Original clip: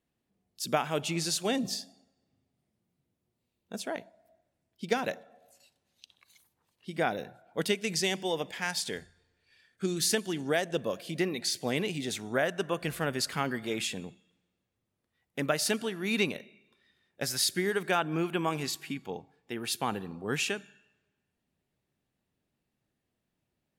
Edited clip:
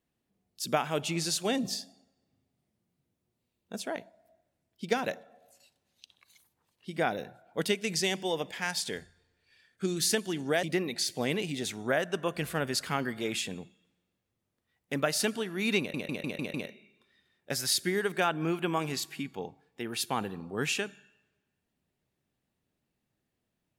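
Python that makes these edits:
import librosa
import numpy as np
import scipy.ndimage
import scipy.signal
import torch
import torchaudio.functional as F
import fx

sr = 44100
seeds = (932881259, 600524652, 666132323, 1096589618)

y = fx.edit(x, sr, fx.cut(start_s=10.63, length_s=0.46),
    fx.stutter(start_s=16.25, slice_s=0.15, count=6), tone=tone)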